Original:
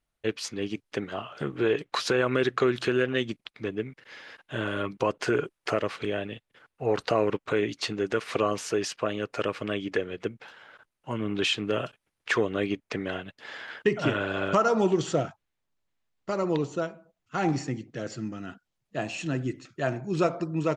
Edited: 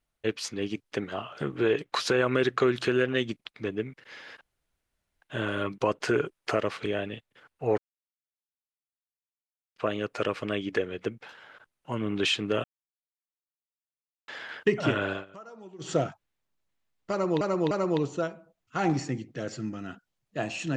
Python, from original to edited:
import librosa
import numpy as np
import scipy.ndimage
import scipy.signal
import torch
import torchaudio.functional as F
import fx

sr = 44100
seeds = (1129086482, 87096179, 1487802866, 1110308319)

y = fx.edit(x, sr, fx.insert_room_tone(at_s=4.41, length_s=0.81),
    fx.silence(start_s=6.97, length_s=1.98),
    fx.silence(start_s=11.83, length_s=1.64),
    fx.fade_down_up(start_s=14.29, length_s=0.83, db=-23.5, fade_s=0.15),
    fx.repeat(start_s=16.3, length_s=0.3, count=3), tone=tone)